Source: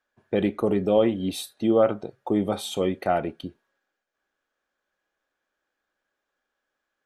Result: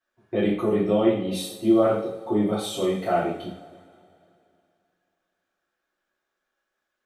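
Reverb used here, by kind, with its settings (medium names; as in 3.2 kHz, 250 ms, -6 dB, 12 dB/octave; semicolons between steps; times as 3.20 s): two-slope reverb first 0.56 s, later 2.7 s, from -21 dB, DRR -9.5 dB; trim -9 dB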